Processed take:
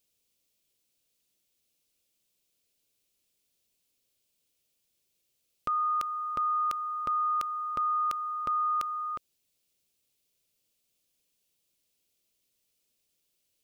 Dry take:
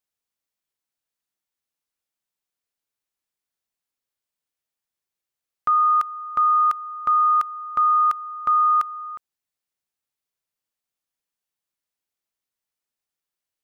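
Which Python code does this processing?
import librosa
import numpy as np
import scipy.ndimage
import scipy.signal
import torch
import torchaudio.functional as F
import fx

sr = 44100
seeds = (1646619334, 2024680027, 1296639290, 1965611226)

p1 = fx.band_shelf(x, sr, hz=1200.0, db=-11.5, octaves=1.7)
p2 = fx.over_compress(p1, sr, threshold_db=-38.0, ratio=-0.5)
y = p1 + (p2 * librosa.db_to_amplitude(0.0))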